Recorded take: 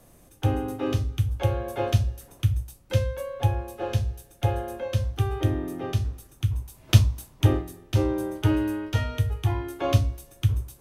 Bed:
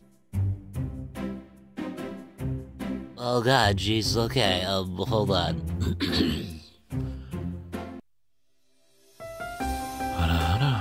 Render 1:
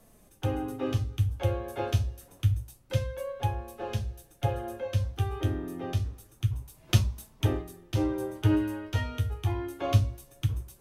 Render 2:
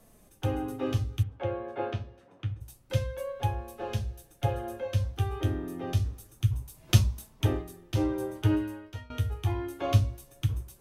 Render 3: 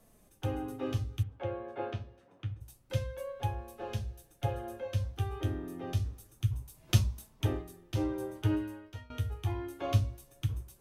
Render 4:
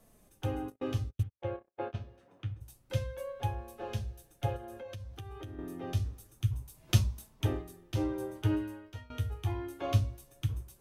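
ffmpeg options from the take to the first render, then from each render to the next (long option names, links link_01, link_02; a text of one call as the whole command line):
ffmpeg -i in.wav -af "flanger=delay=4.5:depth=7.6:regen=50:speed=0.27:shape=sinusoidal" out.wav
ffmpeg -i in.wav -filter_complex "[0:a]asplit=3[link_01][link_02][link_03];[link_01]afade=type=out:start_time=1.22:duration=0.02[link_04];[link_02]highpass=160,lowpass=2300,afade=type=in:start_time=1.22:duration=0.02,afade=type=out:start_time=2.6:duration=0.02[link_05];[link_03]afade=type=in:start_time=2.6:duration=0.02[link_06];[link_04][link_05][link_06]amix=inputs=3:normalize=0,asettb=1/sr,asplit=3[link_07][link_08][link_09];[link_07]atrim=end=5.874[link_10];[link_08]atrim=start=5.87:end=7.19,asetpts=PTS-STARTPTS,afade=type=in:duration=0.004:curve=qsin,afade=type=out:start_time=1.316:duration=0.004:curve=qsin,bass=frequency=250:gain=2,treble=frequency=4000:gain=3[link_11];[link_09]atrim=start=7.186[link_12];[link_10][link_11]acrossfade=duration=0.004:curve1=hsin:curve2=qsin[link_13];[link_13][link_12]acrossfade=duration=0.004:curve1=qsin:curve2=hsin,asplit=2[link_14][link_15];[link_14]atrim=end=9.1,asetpts=PTS-STARTPTS,afade=type=out:start_time=8.39:duration=0.71:silence=0.0891251[link_16];[link_15]atrim=start=9.1,asetpts=PTS-STARTPTS,afade=type=in:duration=0.004:curve=hsin:silence=0.0891251[link_17];[link_16][link_17]concat=n=2:v=0:a=1" out.wav
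ffmpeg -i in.wav -af "volume=-4.5dB" out.wav
ffmpeg -i in.wav -filter_complex "[0:a]asplit=3[link_01][link_02][link_03];[link_01]afade=type=out:start_time=0.68:duration=0.02[link_04];[link_02]agate=range=-49dB:threshold=-39dB:ratio=16:release=100:detection=peak,afade=type=in:start_time=0.68:duration=0.02,afade=type=out:start_time=1.97:duration=0.02[link_05];[link_03]afade=type=in:start_time=1.97:duration=0.02[link_06];[link_04][link_05][link_06]amix=inputs=3:normalize=0,asettb=1/sr,asplit=3[link_07][link_08][link_09];[link_07]atrim=end=4.564[link_10];[link_08]atrim=start=4.56:end=5.59,asetpts=PTS-STARTPTS,afade=type=in:duration=0.004:curve=qsin,afade=type=out:start_time=1.026:duration=0.004:curve=qsin,acompressor=threshold=-41dB:ratio=5:attack=3.2:release=140:knee=1:detection=peak[link_11];[link_09]atrim=start=5.586[link_12];[link_10][link_11]acrossfade=duration=0.004:curve1=hsin:curve2=qsin[link_13];[link_13][link_12]acrossfade=duration=0.004:curve1=qsin:curve2=hsin" out.wav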